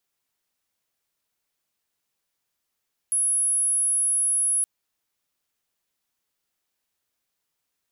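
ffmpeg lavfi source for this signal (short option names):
-f lavfi -i "sine=f=10700:d=1.52:r=44100,volume=-1.44dB"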